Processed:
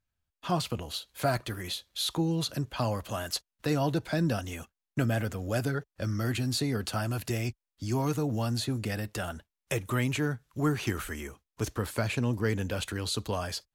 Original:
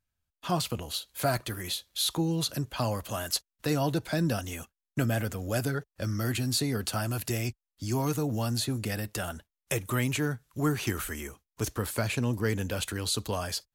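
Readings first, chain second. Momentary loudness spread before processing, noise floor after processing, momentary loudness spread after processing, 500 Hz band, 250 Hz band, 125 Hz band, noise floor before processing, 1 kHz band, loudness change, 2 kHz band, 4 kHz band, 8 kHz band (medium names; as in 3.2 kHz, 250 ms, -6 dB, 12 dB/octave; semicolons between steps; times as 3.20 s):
7 LU, under -85 dBFS, 8 LU, 0.0 dB, 0.0 dB, 0.0 dB, under -85 dBFS, 0.0 dB, -0.5 dB, -0.5 dB, -2.0 dB, -5.0 dB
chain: treble shelf 7 kHz -8.5 dB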